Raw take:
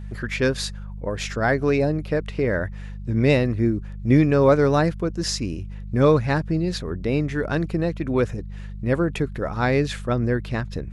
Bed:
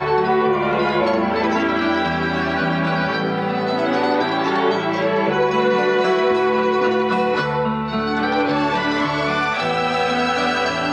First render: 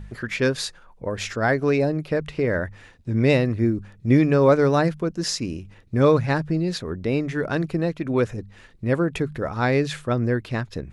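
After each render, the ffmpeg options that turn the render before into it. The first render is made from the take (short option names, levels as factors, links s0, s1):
-af "bandreject=f=50:t=h:w=4,bandreject=f=100:t=h:w=4,bandreject=f=150:t=h:w=4,bandreject=f=200:t=h:w=4"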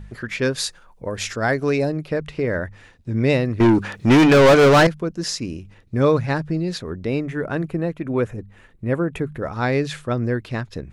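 -filter_complex "[0:a]asettb=1/sr,asplit=3[s0][s1][s2];[s0]atrim=end=0.574[s3];[s1]atrim=start=0.57:end=1.92,asetpts=PTS-STARTPTS,afade=t=in:d=0.004:c=qsin,afade=t=out:st=1.346:d=0.004:c=qsin,highshelf=f=4800:g=7.5[s4];[s2]atrim=start=1.916[s5];[s3][s4]acrossfade=d=0.004:c1=hsin:c2=qsin[s6];[s6][s5]acrossfade=d=0.004:c1=qsin:c2=hsin,asettb=1/sr,asplit=3[s7][s8][s9];[s7]atrim=end=3.604[s10];[s8]atrim=start=3.6:end=4.87,asetpts=PTS-STARTPTS,afade=t=in:d=0.004:c=qsin,afade=t=out:st=1.266:d=0.004:c=qsin,asplit=2[s11][s12];[s12]highpass=f=720:p=1,volume=28.2,asoftclip=type=tanh:threshold=0.531[s13];[s11][s13]amix=inputs=2:normalize=0,lowpass=f=5500:p=1,volume=0.501[s14];[s9]atrim=start=4.866[s15];[s10][s14]acrossfade=d=0.004:c1=hsin:c2=qsin[s16];[s16][s15]acrossfade=d=0.004:c1=qsin:c2=hsin,asettb=1/sr,asplit=3[s17][s18][s19];[s17]atrim=end=7.204[s20];[s18]atrim=start=7.2:end=9.43,asetpts=PTS-STARTPTS,afade=t=in:d=0.004:c=qsin,afade=t=out:st=2.226:d=0.004:c=qsin,equalizer=f=4900:w=1.2:g=-10.5[s21];[s19]atrim=start=9.426[s22];[s20][s21]acrossfade=d=0.004:c1=hsin:c2=qsin[s23];[s23][s22]acrossfade=d=0.004:c1=qsin:c2=hsin"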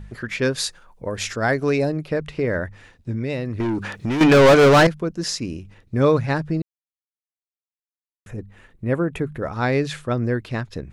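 -filter_complex "[0:a]asettb=1/sr,asplit=3[s0][s1][s2];[s0]atrim=end=3.114[s3];[s1]atrim=start=3.11:end=4.21,asetpts=PTS-STARTPTS,afade=t=in:d=0.004:c=qsin,afade=t=out:st=1.096:d=0.004:c=qsin,acompressor=threshold=0.0794:ratio=4:attack=3.2:release=140:knee=1:detection=peak[s4];[s2]atrim=start=4.206[s5];[s3][s4]acrossfade=d=0.004:c1=hsin:c2=qsin[s6];[s6][s5]acrossfade=d=0.004:c1=qsin:c2=hsin,asplit=3[s7][s8][s9];[s7]atrim=end=6.62,asetpts=PTS-STARTPTS,afade=t=out:st=6.616:d=0.004:c=hsin[s10];[s8]atrim=start=6.62:end=8.26,asetpts=PTS-STARTPTS,volume=0[s11];[s9]atrim=start=8.26,asetpts=PTS-STARTPTS,afade=t=in:d=0.004:c=hsin[s12];[s10][s11][s12]concat=n=3:v=0:a=1"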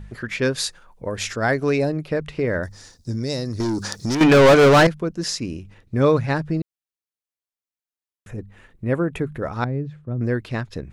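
-filter_complex "[0:a]asettb=1/sr,asplit=3[s0][s1][s2];[s0]atrim=end=2.634[s3];[s1]atrim=start=2.63:end=4.15,asetpts=PTS-STARTPTS,afade=t=in:d=0.004:c=qsin,afade=t=out:st=1.516:d=0.004:c=qsin,highshelf=f=3700:t=q:w=3:g=12[s4];[s2]atrim=start=4.146[s5];[s3][s4]acrossfade=d=0.004:c1=hsin:c2=qsin[s6];[s6][s5]acrossfade=d=0.004:c1=qsin:c2=hsin,asettb=1/sr,asplit=3[s7][s8][s9];[s7]atrim=end=9.644[s10];[s8]atrim=start=9.64:end=10.21,asetpts=PTS-STARTPTS,afade=t=in:d=0.004:c=qsin,afade=t=out:st=0.566:d=0.004:c=qsin,bandpass=f=120:t=q:w=0.94[s11];[s9]atrim=start=10.206[s12];[s10][s11]acrossfade=d=0.004:c1=hsin:c2=qsin[s13];[s13][s12]acrossfade=d=0.004:c1=qsin:c2=hsin"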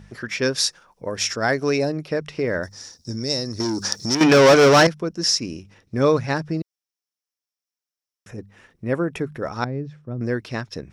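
-af "highpass=f=160:p=1,equalizer=f=5500:w=5.4:g=13"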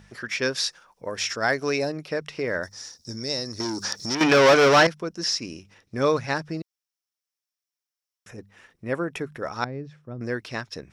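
-filter_complex "[0:a]acrossover=split=4600[s0][s1];[s1]acompressor=threshold=0.0251:ratio=4:attack=1:release=60[s2];[s0][s2]amix=inputs=2:normalize=0,lowshelf=f=490:g=-8"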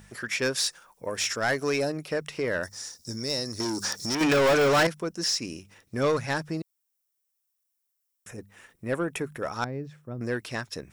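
-af "aexciter=amount=2:drive=8.7:freq=7300,asoftclip=type=tanh:threshold=0.133"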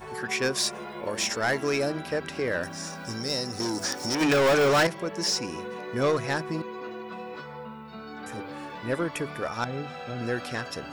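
-filter_complex "[1:a]volume=0.1[s0];[0:a][s0]amix=inputs=2:normalize=0"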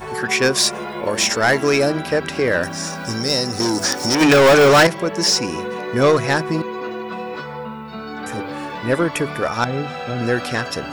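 -af "volume=3.16"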